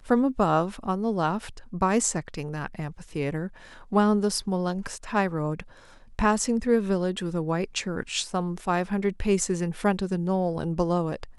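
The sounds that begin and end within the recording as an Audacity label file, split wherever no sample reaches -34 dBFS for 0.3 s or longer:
3.920000	5.620000	sound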